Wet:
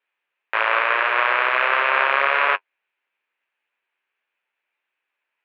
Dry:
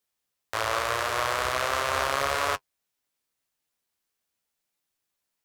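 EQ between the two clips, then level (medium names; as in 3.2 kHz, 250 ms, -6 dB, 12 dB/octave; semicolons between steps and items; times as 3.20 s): distance through air 56 m; cabinet simulation 300–2900 Hz, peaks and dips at 380 Hz +6 dB, 550 Hz +4 dB, 920 Hz +5 dB, 1.6 kHz +4 dB, 2.5 kHz +7 dB; peaking EQ 2.2 kHz +12.5 dB 2.8 oct; -3.5 dB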